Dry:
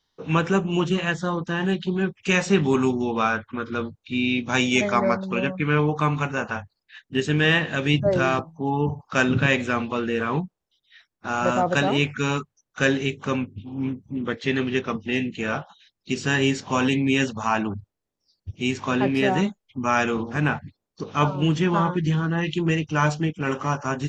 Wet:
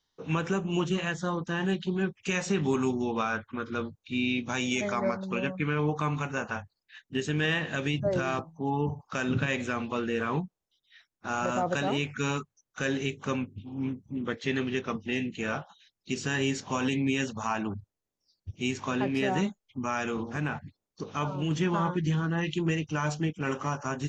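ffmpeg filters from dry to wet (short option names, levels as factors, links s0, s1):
-filter_complex "[0:a]asettb=1/sr,asplit=3[s0][s1][s2];[s0]atrim=end=19.834[s3];[s1]atrim=start=19.83:end=21.51,asetpts=PTS-STARTPTS,afade=t=in:d=0.004:c=qsin,afade=t=out:st=1.676:d=0.004:c=qsin,acompressor=threshold=0.0708:ratio=2:attack=3.2:release=140:knee=1:detection=peak[s4];[s2]atrim=start=21.506[s5];[s3][s4]acrossfade=d=0.004:c1=hsin:c2=qsin[s6];[s6][s5]acrossfade=d=0.004:c1=qsin:c2=hsin,equalizer=f=6500:w=3.3:g=4.5,alimiter=limit=0.237:level=0:latency=1:release=109,volume=0.562"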